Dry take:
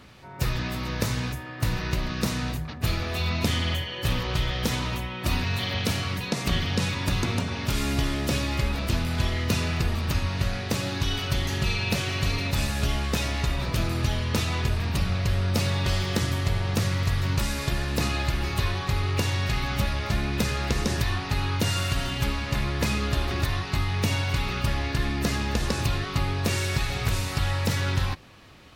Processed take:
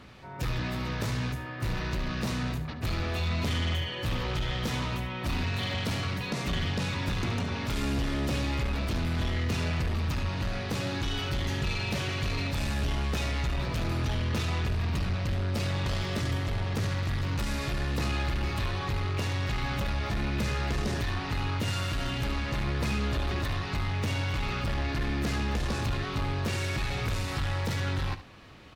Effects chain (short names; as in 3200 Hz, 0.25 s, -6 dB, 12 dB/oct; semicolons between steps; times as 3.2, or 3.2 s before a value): soft clip -25 dBFS, distortion -11 dB; high shelf 6200 Hz -8.5 dB; echo 72 ms -13 dB